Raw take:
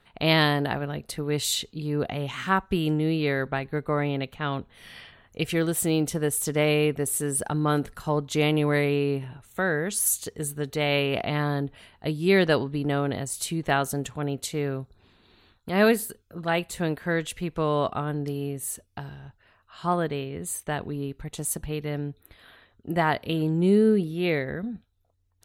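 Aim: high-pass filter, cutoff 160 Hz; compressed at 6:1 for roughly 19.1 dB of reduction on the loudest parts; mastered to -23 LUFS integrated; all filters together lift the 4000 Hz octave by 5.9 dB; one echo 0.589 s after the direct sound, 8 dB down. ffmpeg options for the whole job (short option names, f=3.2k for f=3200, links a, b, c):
-af "highpass=160,equalizer=f=4k:t=o:g=7.5,acompressor=threshold=-36dB:ratio=6,aecho=1:1:589:0.398,volume=16dB"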